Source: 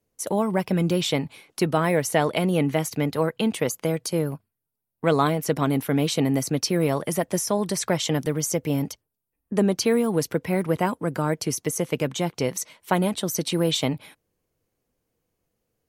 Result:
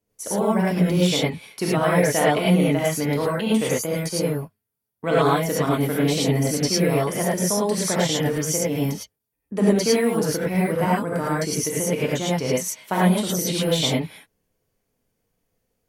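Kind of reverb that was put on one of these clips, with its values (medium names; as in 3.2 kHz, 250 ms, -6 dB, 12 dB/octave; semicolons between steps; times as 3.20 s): gated-style reverb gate 130 ms rising, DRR -6.5 dB; trim -4 dB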